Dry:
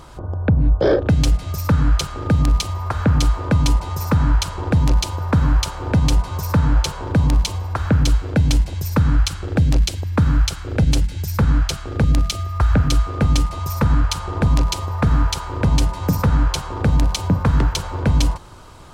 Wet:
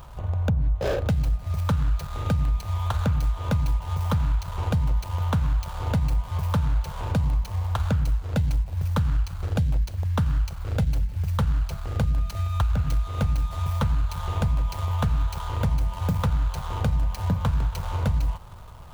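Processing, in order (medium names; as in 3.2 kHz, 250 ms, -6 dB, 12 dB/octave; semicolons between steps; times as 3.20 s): median filter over 25 samples; peaking EQ 320 Hz -15 dB 1.1 oct; on a send at -21 dB: reverberation, pre-delay 3 ms; on the sum: compression, threshold -21 dBFS, peak gain reduction 9.5 dB; treble shelf 11 kHz +8.5 dB; trim +1 dB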